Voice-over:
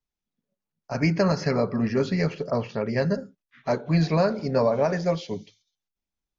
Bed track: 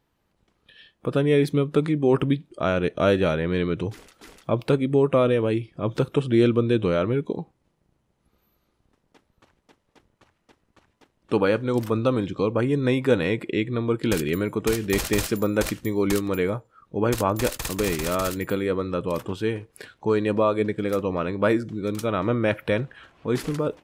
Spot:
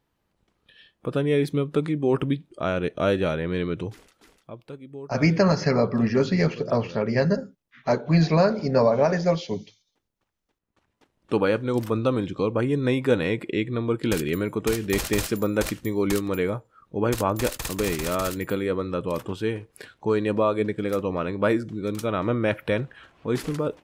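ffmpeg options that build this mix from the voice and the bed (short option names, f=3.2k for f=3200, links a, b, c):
-filter_complex "[0:a]adelay=4200,volume=2.5dB[a];[1:a]volume=15.5dB,afade=t=out:st=3.76:d=0.81:silence=0.149624,afade=t=in:st=10.6:d=0.7:silence=0.125893[b];[a][b]amix=inputs=2:normalize=0"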